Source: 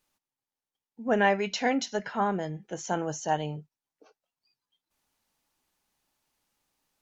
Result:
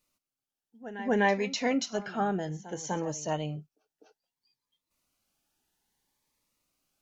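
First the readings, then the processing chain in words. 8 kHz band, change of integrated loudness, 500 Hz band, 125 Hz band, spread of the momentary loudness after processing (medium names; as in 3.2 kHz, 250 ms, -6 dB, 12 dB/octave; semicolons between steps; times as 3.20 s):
no reading, -1.5 dB, -1.5 dB, 0.0 dB, 12 LU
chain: pre-echo 250 ms -15.5 dB; Shepard-style phaser rising 0.61 Hz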